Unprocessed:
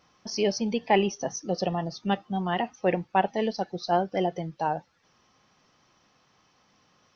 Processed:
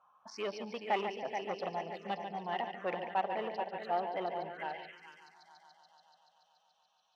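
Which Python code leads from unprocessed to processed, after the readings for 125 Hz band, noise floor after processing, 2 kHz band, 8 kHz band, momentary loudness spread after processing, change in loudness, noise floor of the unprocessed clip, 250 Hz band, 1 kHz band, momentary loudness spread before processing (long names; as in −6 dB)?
−18.5 dB, −74 dBFS, −7.0 dB, can't be measured, 11 LU, −9.5 dB, −66 dBFS, −16.5 dB, −7.5 dB, 7 LU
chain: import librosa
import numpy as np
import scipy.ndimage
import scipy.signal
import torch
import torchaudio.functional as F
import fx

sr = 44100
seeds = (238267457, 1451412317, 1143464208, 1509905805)

p1 = fx.wiener(x, sr, points=9)
p2 = p1 + fx.echo_heads(p1, sr, ms=143, heads='first and third', feedback_pct=64, wet_db=-9.5, dry=0)
p3 = fx.env_phaser(p2, sr, low_hz=340.0, high_hz=1300.0, full_db=-24.5)
p4 = fx.peak_eq(p3, sr, hz=2000.0, db=2.5, octaves=0.73)
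p5 = np.clip(p4, -10.0 ** (-22.0 / 20.0), 10.0 ** (-22.0 / 20.0))
p6 = p4 + F.gain(torch.from_numpy(p5), -7.0).numpy()
p7 = fx.high_shelf(p6, sr, hz=4000.0, db=9.5)
p8 = 10.0 ** (-14.0 / 20.0) * np.tanh(p7 / 10.0 ** (-14.0 / 20.0))
y = fx.filter_sweep_bandpass(p8, sr, from_hz=1100.0, to_hz=3900.0, start_s=4.47, end_s=5.17, q=2.1)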